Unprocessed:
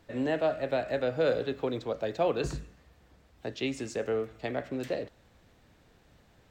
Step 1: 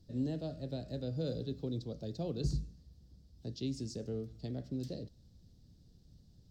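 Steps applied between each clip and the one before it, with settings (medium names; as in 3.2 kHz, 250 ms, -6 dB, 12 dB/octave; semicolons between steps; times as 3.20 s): FFT filter 170 Hz 0 dB, 1 kHz -27 dB, 2.3 kHz -29 dB, 4.9 kHz -1 dB, 7.1 kHz -11 dB; trim +3 dB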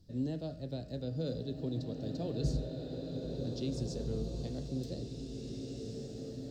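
swelling reverb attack 2100 ms, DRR 1.5 dB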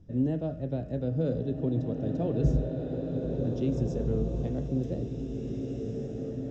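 boxcar filter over 10 samples; trim +8 dB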